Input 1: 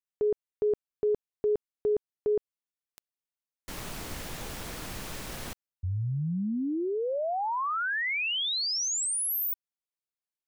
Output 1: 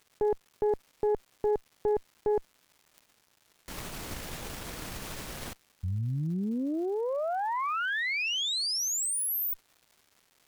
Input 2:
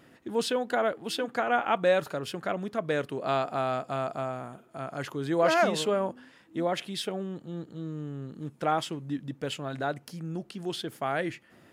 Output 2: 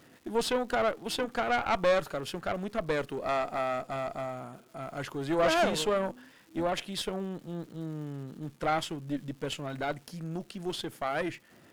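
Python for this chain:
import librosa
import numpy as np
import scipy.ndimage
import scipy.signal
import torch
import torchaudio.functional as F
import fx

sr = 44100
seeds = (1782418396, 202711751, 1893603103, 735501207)

y = fx.dmg_crackle(x, sr, seeds[0], per_s=470.0, level_db=-49.0)
y = fx.tube_stage(y, sr, drive_db=23.0, bias=0.8)
y = F.gain(torch.from_numpy(y), 4.0).numpy()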